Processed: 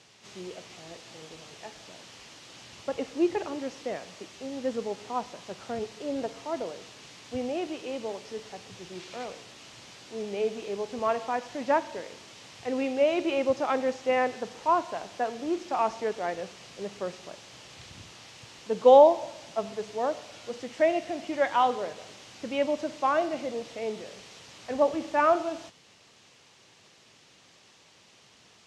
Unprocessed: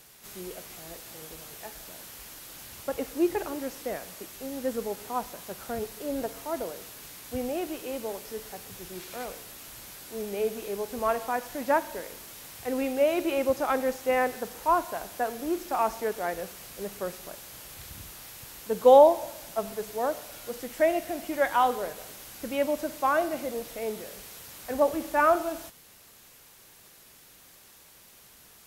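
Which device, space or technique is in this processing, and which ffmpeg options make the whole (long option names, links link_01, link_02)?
car door speaker: -af "highpass=110,equalizer=frequency=110:width_type=q:width=4:gain=4,equalizer=frequency=1500:width_type=q:width=4:gain=-4,equalizer=frequency=2900:width_type=q:width=4:gain=3,lowpass=frequency=6500:width=0.5412,lowpass=frequency=6500:width=1.3066"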